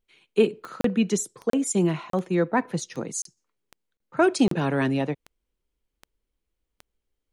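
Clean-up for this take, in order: de-click; interpolate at 0.81/1.5/2.1/3.22/3.97/4.48, 33 ms

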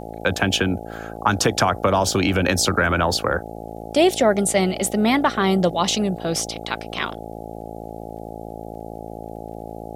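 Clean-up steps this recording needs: de-click; de-hum 55.5 Hz, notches 15; expander -26 dBFS, range -21 dB

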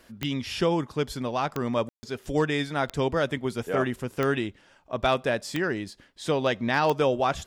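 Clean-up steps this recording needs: clip repair -13 dBFS; de-click; room tone fill 1.89–2.03

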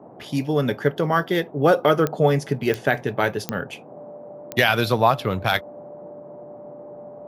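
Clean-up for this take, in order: de-click; notch 590 Hz, Q 30; noise print and reduce 25 dB

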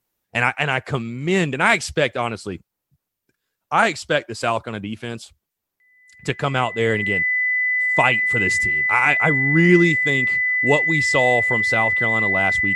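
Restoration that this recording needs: notch 2000 Hz, Q 30

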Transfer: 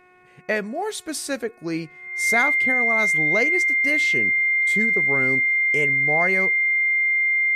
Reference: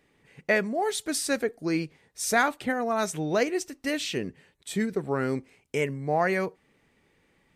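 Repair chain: de-hum 363.5 Hz, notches 7; notch 2100 Hz, Q 30

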